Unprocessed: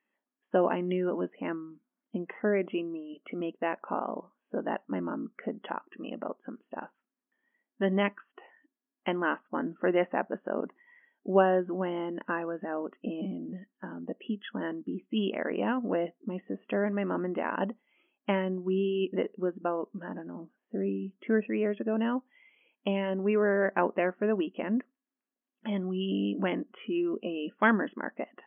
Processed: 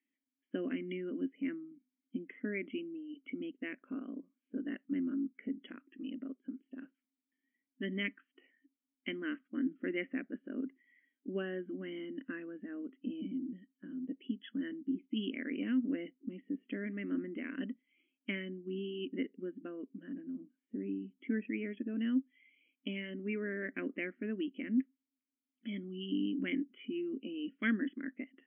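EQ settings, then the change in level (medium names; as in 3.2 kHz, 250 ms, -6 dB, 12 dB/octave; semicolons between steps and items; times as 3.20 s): dynamic bell 1.7 kHz, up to +6 dB, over -44 dBFS, Q 1.1; vowel filter i; +4.0 dB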